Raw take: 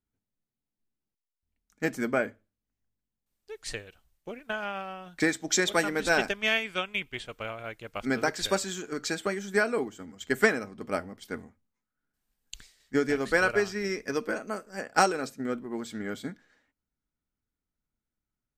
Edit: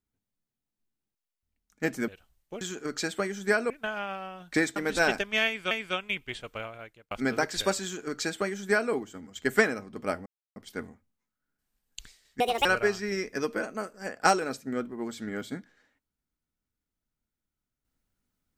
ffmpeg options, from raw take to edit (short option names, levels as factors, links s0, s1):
-filter_complex "[0:a]asplit=10[s0][s1][s2][s3][s4][s5][s6][s7][s8][s9];[s0]atrim=end=2.082[s10];[s1]atrim=start=3.828:end=4.362[s11];[s2]atrim=start=8.678:end=9.772[s12];[s3]atrim=start=4.358:end=5.422[s13];[s4]atrim=start=5.858:end=6.812[s14];[s5]atrim=start=6.558:end=7.96,asetpts=PTS-STARTPTS,afade=t=out:st=0.842:d=0.56[s15];[s6]atrim=start=7.96:end=11.11,asetpts=PTS-STARTPTS,afade=t=in:d=0.004:c=hsin,afade=t=out:st=3.146:d=0.004:c=hsin,apad=pad_dur=0.3[s16];[s7]atrim=start=11.11:end=12.954,asetpts=PTS-STARTPTS,afade=t=in:d=0.004:c=hsin[s17];[s8]atrim=start=12.95:end=13.38,asetpts=PTS-STARTPTS,asetrate=74970,aresample=44100[s18];[s9]atrim=start=13.376[s19];[s10][s11]acrossfade=d=0.004:c1=hsin:c2=hsin[s20];[s20][s12]acrossfade=d=0.004:c1=hsin:c2=hsin[s21];[s21][s13]acrossfade=d=0.004:c1=hsin:c2=hsin[s22];[s22][s14]acrossfade=d=0.004:c1=hsin:c2=hsin[s23];[s15][s16][s17]concat=n=3:v=0:a=1[s24];[s23][s24]acrossfade=d=0.004:c1=hsin:c2=hsin[s25];[s25][s18]acrossfade=d=0.004:c1=hsin:c2=hsin[s26];[s26][s19]acrossfade=d=0.004:c1=hsin:c2=hsin"